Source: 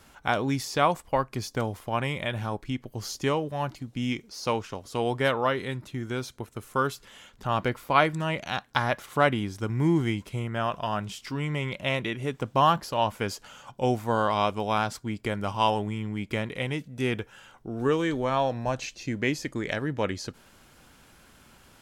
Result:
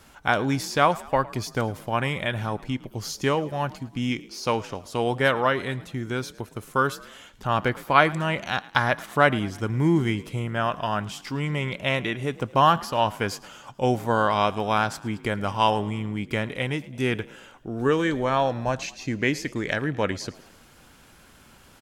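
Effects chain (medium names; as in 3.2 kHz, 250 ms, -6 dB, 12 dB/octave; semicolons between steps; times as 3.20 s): dynamic bell 1.6 kHz, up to +4 dB, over -41 dBFS, Q 2.7; on a send: frequency-shifting echo 109 ms, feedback 52%, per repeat +43 Hz, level -20.5 dB; on the sum: trim +2.5 dB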